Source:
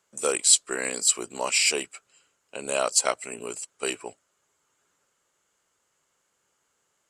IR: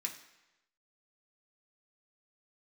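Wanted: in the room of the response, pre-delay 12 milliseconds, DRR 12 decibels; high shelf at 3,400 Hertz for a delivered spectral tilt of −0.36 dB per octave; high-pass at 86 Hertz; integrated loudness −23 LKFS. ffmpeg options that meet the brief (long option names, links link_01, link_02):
-filter_complex "[0:a]highpass=86,highshelf=frequency=3400:gain=-8.5,asplit=2[link_01][link_02];[1:a]atrim=start_sample=2205,adelay=12[link_03];[link_02][link_03]afir=irnorm=-1:irlink=0,volume=-12dB[link_04];[link_01][link_04]amix=inputs=2:normalize=0,volume=5.5dB"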